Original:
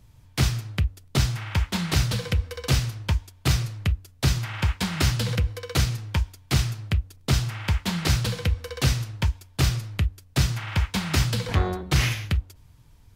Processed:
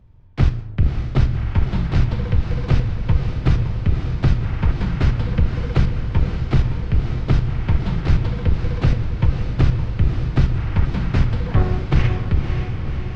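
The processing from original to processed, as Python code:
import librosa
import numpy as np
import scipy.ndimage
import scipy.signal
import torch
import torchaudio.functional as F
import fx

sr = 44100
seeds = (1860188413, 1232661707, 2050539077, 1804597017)

p1 = fx.octave_divider(x, sr, octaves=2, level_db=-2.0)
p2 = fx.level_steps(p1, sr, step_db=21)
p3 = p1 + (p2 * librosa.db_to_amplitude(2.0))
p4 = fx.spacing_loss(p3, sr, db_at_10k=37)
y = fx.echo_diffused(p4, sr, ms=548, feedback_pct=66, wet_db=-6.0)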